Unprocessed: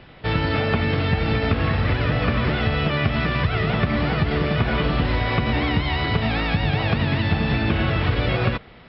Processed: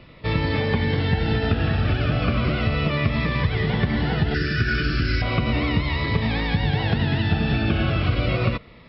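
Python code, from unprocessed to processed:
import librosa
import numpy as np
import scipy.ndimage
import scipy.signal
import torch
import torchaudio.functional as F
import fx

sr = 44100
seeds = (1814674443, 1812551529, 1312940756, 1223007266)

y = fx.curve_eq(x, sr, hz=(120.0, 190.0, 350.0, 910.0, 1500.0, 3400.0, 5000.0), db=(0, -6, 1, -27, 9, -4, 13), at=(4.34, 5.22))
y = fx.notch_cascade(y, sr, direction='falling', hz=0.35)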